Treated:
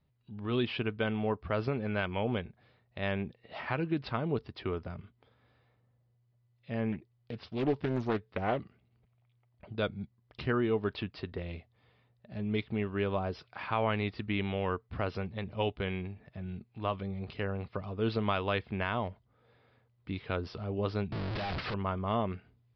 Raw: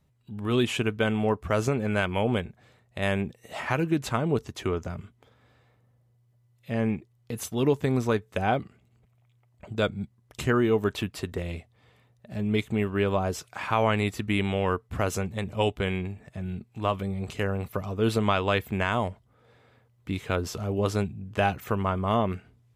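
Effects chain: 21.12–21.74 s: one-bit comparator; resampled via 11.025 kHz; 6.92–8.60 s: loudspeaker Doppler distortion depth 0.51 ms; trim -6.5 dB

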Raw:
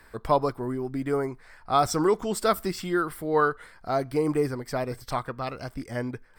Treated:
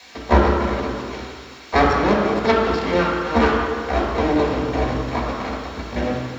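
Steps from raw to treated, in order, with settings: cycle switcher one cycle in 2, muted; 0.90–1.73 s: high-pass 1.2 kHz 12 dB/octave; 2.72–3.22 s: overdrive pedal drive 16 dB, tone 6.2 kHz, clips at -16 dBFS; bit crusher 5-bit; Chebyshev shaper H 2 -7 dB, 3 -13 dB, 5 -24 dB, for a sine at -9.5 dBFS; added noise blue -37 dBFS; distance through air 220 m; reverberation RT60 2.0 s, pre-delay 3 ms, DRR -5 dB; trim -1 dB

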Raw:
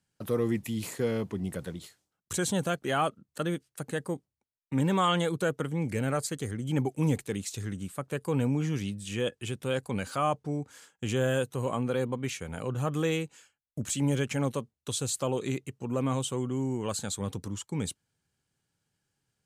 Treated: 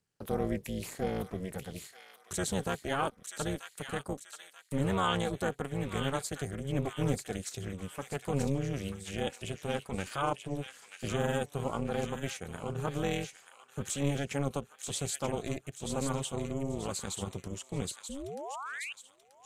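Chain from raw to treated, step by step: painted sound rise, 18.09–18.93 s, 220–2900 Hz -36 dBFS; AM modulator 280 Hz, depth 90%; feedback echo behind a high-pass 934 ms, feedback 41%, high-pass 1.7 kHz, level -5 dB

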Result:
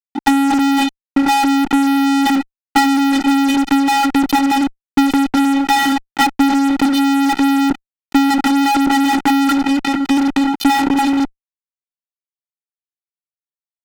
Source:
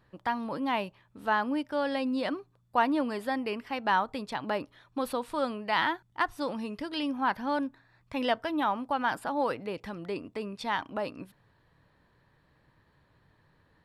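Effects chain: vocoder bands 16, square 276 Hz; fuzz box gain 51 dB, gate -54 dBFS; transient shaper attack +6 dB, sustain +10 dB

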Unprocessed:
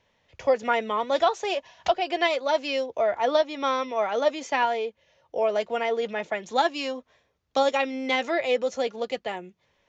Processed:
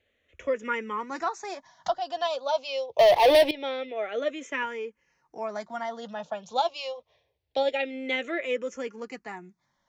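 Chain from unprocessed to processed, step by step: 2.99–3.51 s: waveshaping leveller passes 5; barber-pole phaser -0.25 Hz; trim -2 dB

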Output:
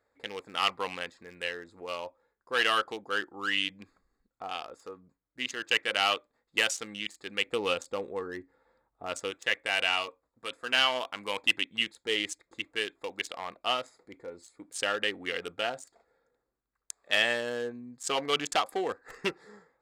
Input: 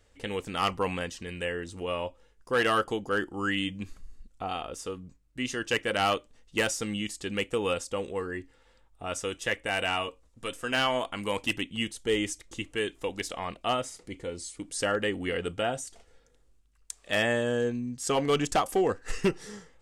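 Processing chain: local Wiener filter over 15 samples; high-pass 890 Hz 6 dB/octave, from 7.46 s 340 Hz, from 9.31 s 760 Hz; dynamic bell 3.2 kHz, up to +7 dB, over -47 dBFS, Q 1

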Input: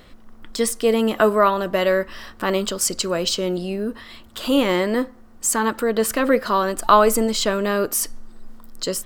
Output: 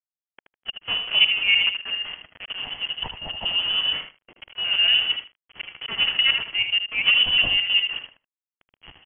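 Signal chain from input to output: time reversed locally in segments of 119 ms; high-pass 76 Hz 6 dB/octave; peaking EQ 470 Hz +10.5 dB 1.7 oct; hum notches 60/120/180/240/300/360/420/480/540/600 Hz; slow attack 319 ms; bit crusher 5-bit; formant shift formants -4 st; trance gate "xxxxxx.x.x.x" 154 bpm -12 dB; feedback delay 77 ms, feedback 15%, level -8 dB; frequency inversion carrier 3.2 kHz; trim -5 dB

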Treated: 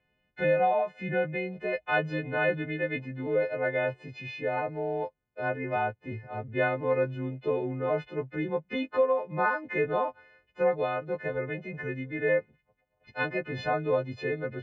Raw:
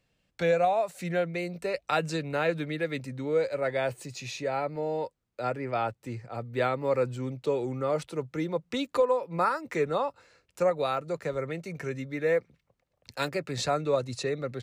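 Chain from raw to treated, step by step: partials quantised in pitch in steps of 3 st; low-pass 2.4 kHz 24 dB/octave; band-stop 1.2 kHz, Q 5.5

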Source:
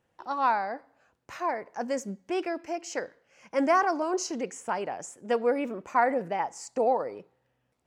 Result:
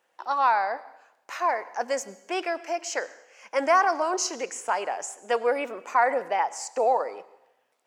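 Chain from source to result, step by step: high-pass 590 Hz 12 dB/octave; in parallel at +1 dB: peak limiter -22 dBFS, peak gain reduction 10.5 dB; on the sum: plate-style reverb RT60 0.89 s, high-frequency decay 1×, pre-delay 85 ms, DRR 18.5 dB

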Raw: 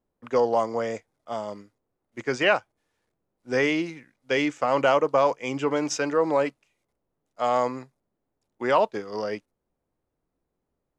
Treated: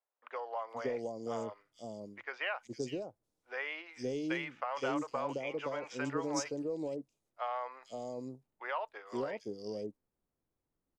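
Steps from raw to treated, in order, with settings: compression, threshold -23 dBFS, peak gain reduction 8 dB; three bands offset in time mids, highs, lows 460/520 ms, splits 590/3700 Hz; trim -6.5 dB

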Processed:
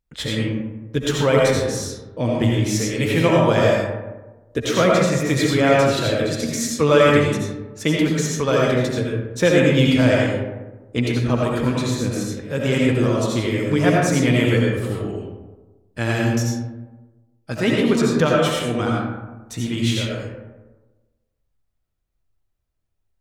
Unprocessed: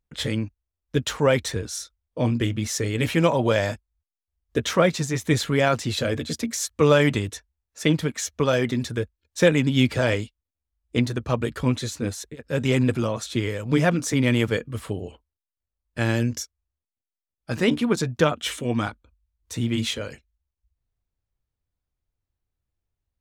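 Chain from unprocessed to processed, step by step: algorithmic reverb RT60 1.2 s, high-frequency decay 0.4×, pre-delay 45 ms, DRR -3 dB

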